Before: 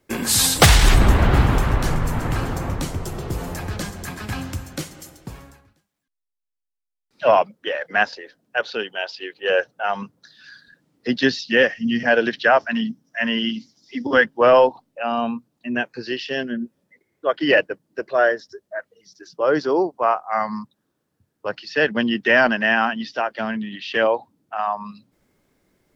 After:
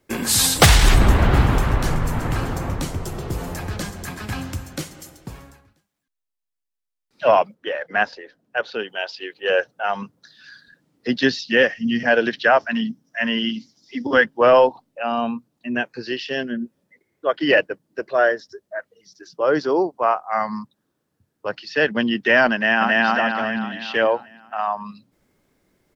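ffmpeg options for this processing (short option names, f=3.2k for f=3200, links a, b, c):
-filter_complex "[0:a]asettb=1/sr,asplit=3[a][b][c];[a]atrim=end=7.544[d];[b]atrim=start=7.54:end=8.88,asetpts=PTS-STARTPTS,afade=t=in:d=0.004:c=qsin,afade=t=out:st=1.336:d=0.004:c=qsin,highshelf=f=3.1k:g=-7[e];[c]atrim=start=8.876[f];[d][e]acrossfade=d=0.004:c1=hsin:c2=qsin[g];[g][f]acrossfade=d=0.004:c1=qsin:c2=hsin,asplit=2[h][i];[i]afade=t=in:st=22.54:d=0.01,afade=t=out:st=23.04:d=0.01,aecho=0:1:270|540|810|1080|1350|1620|1890:1|0.5|0.25|0.125|0.0625|0.03125|0.015625[j];[h][j]amix=inputs=2:normalize=0"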